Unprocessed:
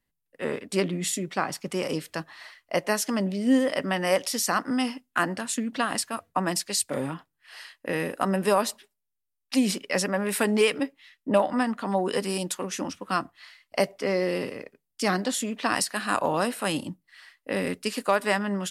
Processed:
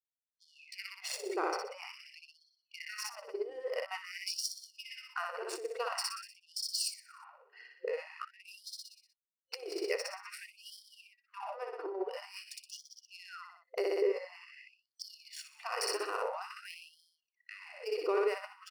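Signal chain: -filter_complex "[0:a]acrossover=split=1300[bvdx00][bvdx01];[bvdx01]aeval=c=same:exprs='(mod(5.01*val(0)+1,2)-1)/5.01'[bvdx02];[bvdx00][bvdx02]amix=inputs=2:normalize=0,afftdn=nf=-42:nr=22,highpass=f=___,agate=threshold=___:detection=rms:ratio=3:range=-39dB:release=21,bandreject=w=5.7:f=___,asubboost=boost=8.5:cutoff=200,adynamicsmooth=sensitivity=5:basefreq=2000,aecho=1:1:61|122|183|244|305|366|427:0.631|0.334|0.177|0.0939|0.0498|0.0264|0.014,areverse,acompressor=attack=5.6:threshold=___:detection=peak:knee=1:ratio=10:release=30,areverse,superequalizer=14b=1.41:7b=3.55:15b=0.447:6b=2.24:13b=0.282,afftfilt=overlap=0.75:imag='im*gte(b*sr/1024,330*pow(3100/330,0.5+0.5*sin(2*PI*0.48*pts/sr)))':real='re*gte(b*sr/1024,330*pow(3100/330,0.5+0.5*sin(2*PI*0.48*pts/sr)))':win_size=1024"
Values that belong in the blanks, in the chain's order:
44, -53dB, 1700, -31dB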